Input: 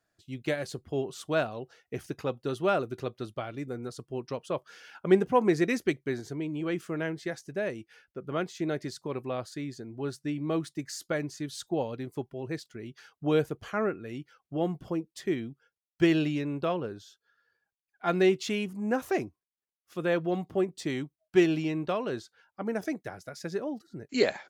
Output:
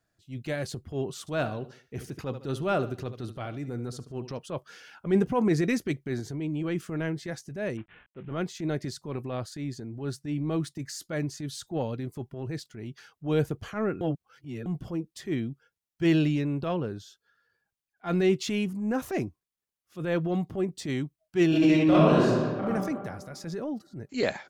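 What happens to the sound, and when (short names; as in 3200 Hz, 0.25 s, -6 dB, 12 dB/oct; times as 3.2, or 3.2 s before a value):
1.19–4.39 feedback echo 74 ms, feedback 36%, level -16 dB
7.77–8.31 CVSD 16 kbps
14.01–14.66 reverse
21.48–22.62 reverb throw, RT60 1.7 s, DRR -9 dB
whole clip: transient shaper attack -8 dB, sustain +2 dB; tone controls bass +7 dB, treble +1 dB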